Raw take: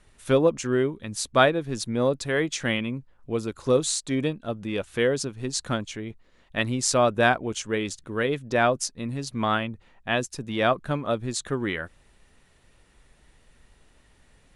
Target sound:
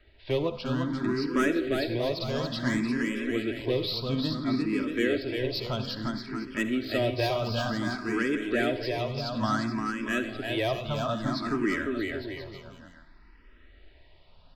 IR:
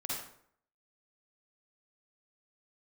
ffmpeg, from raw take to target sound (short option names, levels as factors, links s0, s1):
-filter_complex "[0:a]aresample=11025,aresample=44100,acrossover=split=420|1100[s0][s1][s2];[s1]acompressor=threshold=0.0112:ratio=6[s3];[s2]asoftclip=type=tanh:threshold=0.0501[s4];[s0][s3][s4]amix=inputs=3:normalize=0,aecho=1:1:3.1:0.43,asoftclip=type=hard:threshold=0.133,aecho=1:1:350|630|854|1033|1177:0.631|0.398|0.251|0.158|0.1,asplit=2[s5][s6];[1:a]atrim=start_sample=2205,asetrate=40572,aresample=44100[s7];[s6][s7]afir=irnorm=-1:irlink=0,volume=0.251[s8];[s5][s8]amix=inputs=2:normalize=0,asplit=2[s9][s10];[s10]afreqshift=0.58[s11];[s9][s11]amix=inputs=2:normalize=1"